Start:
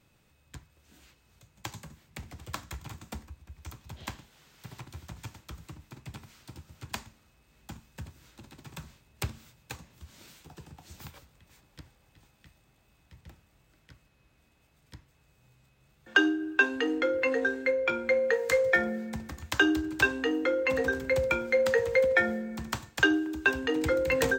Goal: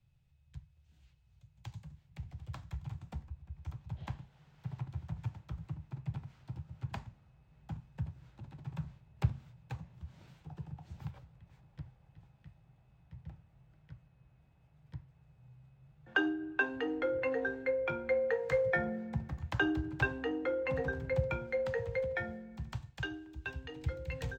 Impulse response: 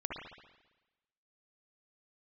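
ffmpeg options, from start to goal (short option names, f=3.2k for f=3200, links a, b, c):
-filter_complex "[0:a]firequalizer=gain_entry='entry(140,0);entry(230,-20);entry(370,-21);entry(800,-15);entry(1100,-20);entry(2900,-14);entry(10000,-25)':delay=0.05:min_phase=1,acrossover=split=150|1700|3500[a][b][c][d];[b]dynaudnorm=f=200:g=31:m=14dB[e];[a][e][c][d]amix=inputs=4:normalize=0"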